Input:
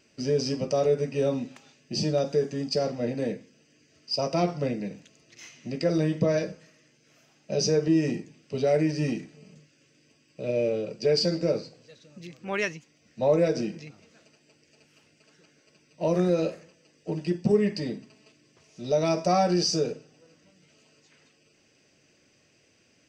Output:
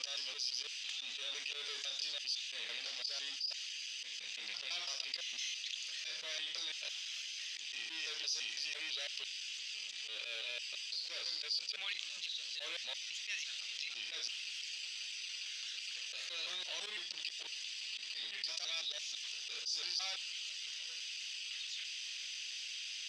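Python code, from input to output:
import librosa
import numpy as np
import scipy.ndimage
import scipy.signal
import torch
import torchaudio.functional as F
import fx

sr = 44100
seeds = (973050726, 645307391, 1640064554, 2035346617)

y = fx.block_reorder(x, sr, ms=168.0, group=5)
y = fx.auto_swell(y, sr, attack_ms=101.0)
y = fx.power_curve(y, sr, exponent=0.7)
y = fx.ladder_bandpass(y, sr, hz=3800.0, resonance_pct=60)
y = fx.env_flatten(y, sr, amount_pct=70)
y = y * librosa.db_to_amplitude(-4.0)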